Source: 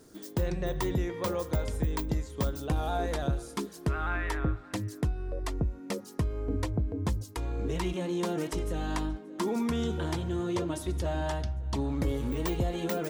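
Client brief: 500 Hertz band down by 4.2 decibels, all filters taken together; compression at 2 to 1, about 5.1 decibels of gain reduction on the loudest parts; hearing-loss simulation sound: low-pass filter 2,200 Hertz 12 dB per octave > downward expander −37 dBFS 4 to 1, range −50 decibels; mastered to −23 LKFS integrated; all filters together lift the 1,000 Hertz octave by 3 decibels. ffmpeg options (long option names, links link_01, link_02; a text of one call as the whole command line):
ffmpeg -i in.wav -af "equalizer=frequency=500:width_type=o:gain=-7.5,equalizer=frequency=1000:width_type=o:gain=6.5,acompressor=threshold=-34dB:ratio=2,lowpass=2200,agate=range=-50dB:threshold=-37dB:ratio=4,volume=14dB" out.wav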